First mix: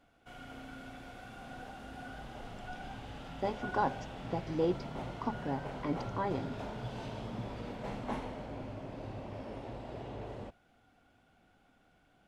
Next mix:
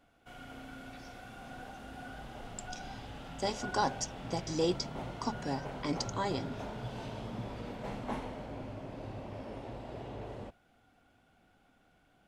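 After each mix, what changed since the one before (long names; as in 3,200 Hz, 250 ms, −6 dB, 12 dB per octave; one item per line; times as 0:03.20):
speech: remove low-pass filter 1,800 Hz 12 dB per octave
background: add high-shelf EQ 11,000 Hz +5.5 dB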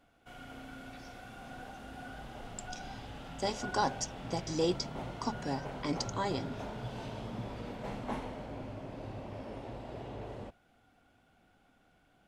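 nothing changed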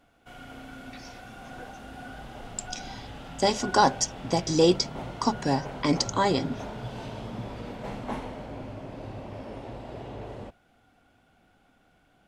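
speech +10.5 dB
background +4.0 dB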